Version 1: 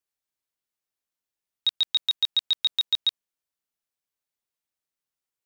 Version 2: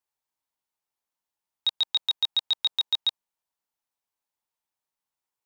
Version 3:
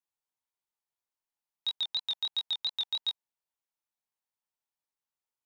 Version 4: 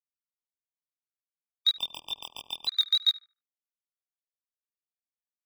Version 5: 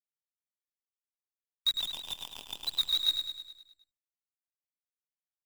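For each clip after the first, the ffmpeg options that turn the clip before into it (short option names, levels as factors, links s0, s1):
-af "equalizer=f=900:t=o:w=0.6:g=10.5,volume=0.841"
-af "flanger=delay=19:depth=6.1:speed=2.9,volume=0.668"
-filter_complex "[0:a]acrusher=bits=7:mix=0:aa=0.5,asplit=2[s0][s1];[s1]adelay=74,lowpass=f=1300:p=1,volume=0.251,asplit=2[s2][s3];[s3]adelay=74,lowpass=f=1300:p=1,volume=0.43,asplit=2[s4][s5];[s5]adelay=74,lowpass=f=1300:p=1,volume=0.43,asplit=2[s6][s7];[s7]adelay=74,lowpass=f=1300:p=1,volume=0.43[s8];[s0][s2][s4][s6][s8]amix=inputs=5:normalize=0,afftfilt=real='re*gt(sin(2*PI*0.56*pts/sr)*(1-2*mod(floor(b*sr/1024/1200),2)),0)':imag='im*gt(sin(2*PI*0.56*pts/sr)*(1-2*mod(floor(b*sr/1024/1200),2)),0)':win_size=1024:overlap=0.75,volume=2.66"
-filter_complex "[0:a]flanger=delay=0.7:depth=2.9:regen=-82:speed=1.8:shape=sinusoidal,acrusher=bits=7:dc=4:mix=0:aa=0.000001,asplit=2[s0][s1];[s1]aecho=0:1:104|208|312|416|520|624|728:0.473|0.256|0.138|0.0745|0.0402|0.0217|0.0117[s2];[s0][s2]amix=inputs=2:normalize=0"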